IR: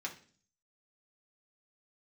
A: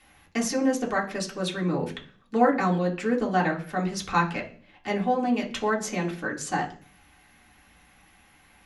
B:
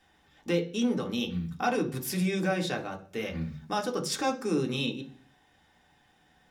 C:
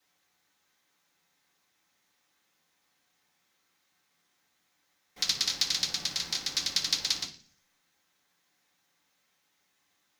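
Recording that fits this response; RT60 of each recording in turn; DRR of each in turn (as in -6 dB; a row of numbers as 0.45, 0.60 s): A; 0.45, 0.45, 0.45 s; -2.0, 2.0, -11.0 dB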